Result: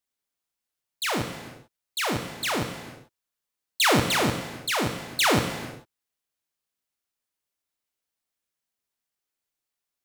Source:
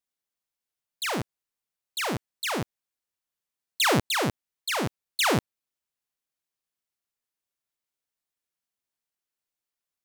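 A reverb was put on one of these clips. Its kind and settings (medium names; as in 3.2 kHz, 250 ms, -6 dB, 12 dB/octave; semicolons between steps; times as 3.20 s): gated-style reverb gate 470 ms falling, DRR 5.5 dB; trim +1.5 dB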